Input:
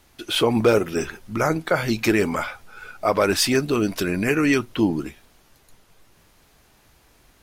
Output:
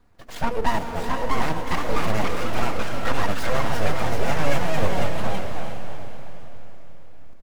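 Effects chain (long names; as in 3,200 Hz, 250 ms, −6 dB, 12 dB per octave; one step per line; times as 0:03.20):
running median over 15 samples
low-shelf EQ 200 Hz +5.5 dB
mains-hum notches 60/120/180/240 Hz
comb filter 4.2 ms, depth 77%
full-wave rectification
on a send: feedback delay with all-pass diffusion 464 ms, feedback 46%, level −6 dB
on the sum: delay with pitch and tempo change per echo 717 ms, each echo +2 semitones, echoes 3
level −5 dB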